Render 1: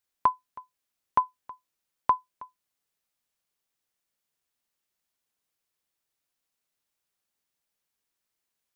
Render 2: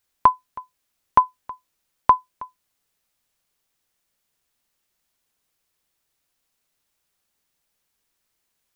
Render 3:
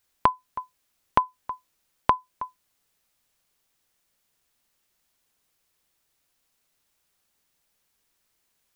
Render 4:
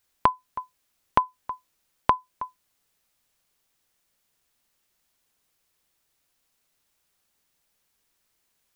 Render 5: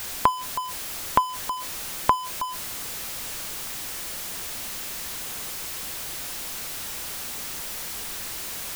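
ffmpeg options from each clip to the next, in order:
-af "lowshelf=f=80:g=7,volume=2.51"
-af "acompressor=threshold=0.1:ratio=4,volume=1.26"
-af anull
-af "aeval=exprs='val(0)+0.5*0.0422*sgn(val(0))':c=same"

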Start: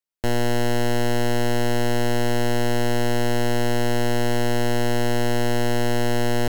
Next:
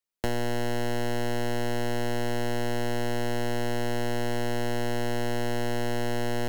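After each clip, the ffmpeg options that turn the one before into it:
-filter_complex "[0:a]acrossover=split=260|3200[s0][s1][s2];[s0]acompressor=threshold=0.0355:ratio=4[s3];[s1]acompressor=threshold=0.0398:ratio=4[s4];[s2]acompressor=threshold=0.0112:ratio=4[s5];[s3][s4][s5]amix=inputs=3:normalize=0"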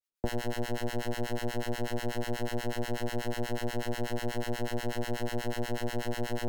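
-filter_complex "[0:a]acrossover=split=860[s0][s1];[s0]aeval=exprs='val(0)*(1-1/2+1/2*cos(2*PI*8.2*n/s))':c=same[s2];[s1]aeval=exprs='val(0)*(1-1/2-1/2*cos(2*PI*8.2*n/s))':c=same[s3];[s2][s3]amix=inputs=2:normalize=0"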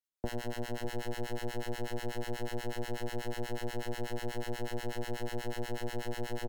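-af "aecho=1:1:606:0.266,volume=0.596"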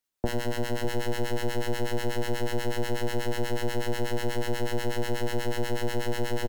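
-filter_complex "[0:a]asplit=2[s0][s1];[s1]adelay=48,volume=0.224[s2];[s0][s2]amix=inputs=2:normalize=0,volume=2.51"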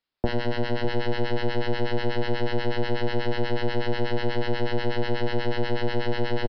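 -af "aresample=11025,aresample=44100,volume=1.5"

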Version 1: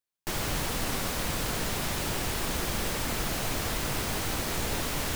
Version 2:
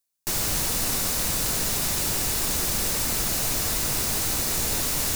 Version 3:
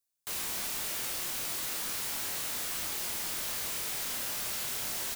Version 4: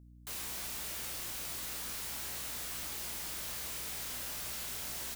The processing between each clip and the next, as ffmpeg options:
-af "areverse,acompressor=mode=upward:threshold=0.01:ratio=2.5,areverse,bass=f=250:g=1,treble=f=4000:g=11,bandreject=f=3200:w=21"
-filter_complex "[0:a]bandreject=f=258.3:t=h:w=4,bandreject=f=516.6:t=h:w=4,bandreject=f=774.9:t=h:w=4,bandreject=f=1033.2:t=h:w=4,aeval=exprs='(mod(20*val(0)+1,2)-1)/20':c=same,asplit=2[s0][s1];[s1]adelay=25,volume=0.668[s2];[s0][s2]amix=inputs=2:normalize=0,volume=0.501"
-af "aeval=exprs='val(0)+0.00355*(sin(2*PI*60*n/s)+sin(2*PI*2*60*n/s)/2+sin(2*PI*3*60*n/s)/3+sin(2*PI*4*60*n/s)/4+sin(2*PI*5*60*n/s)/5)':c=same,volume=0.531"

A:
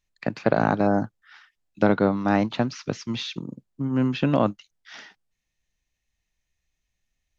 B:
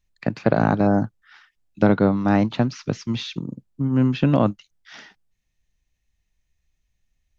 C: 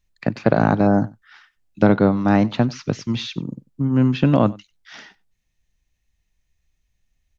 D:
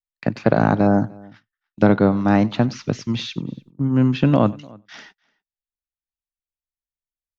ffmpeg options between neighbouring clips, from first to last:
-af "lowshelf=f=210:g=8.5"
-af "aecho=1:1:94:0.0708,volume=1.26"
-filter_complex "[0:a]agate=range=0.0224:threshold=0.00562:ratio=16:detection=peak,asplit=2[s0][s1];[s1]adelay=297.4,volume=0.0562,highshelf=f=4000:g=-6.69[s2];[s0][s2]amix=inputs=2:normalize=0"

